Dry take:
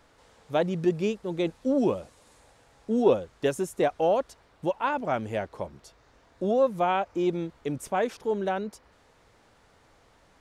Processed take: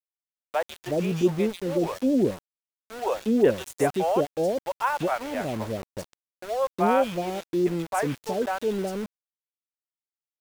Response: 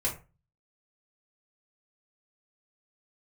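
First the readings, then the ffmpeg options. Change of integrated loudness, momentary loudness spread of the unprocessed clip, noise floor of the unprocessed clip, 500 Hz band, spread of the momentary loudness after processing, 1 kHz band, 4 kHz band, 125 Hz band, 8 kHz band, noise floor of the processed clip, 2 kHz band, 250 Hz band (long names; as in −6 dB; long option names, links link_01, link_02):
+1.5 dB, 10 LU, −61 dBFS, +1.0 dB, 11 LU, +1.5 dB, +2.5 dB, +3.0 dB, +5.0 dB, below −85 dBFS, +2.5 dB, +3.0 dB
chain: -filter_complex "[0:a]acrossover=split=580|2800[link_01][link_02][link_03];[link_03]adelay=140[link_04];[link_01]adelay=370[link_05];[link_05][link_02][link_04]amix=inputs=3:normalize=0,aeval=exprs='val(0)*gte(abs(val(0)),0.0126)':channel_layout=same,volume=3.5dB"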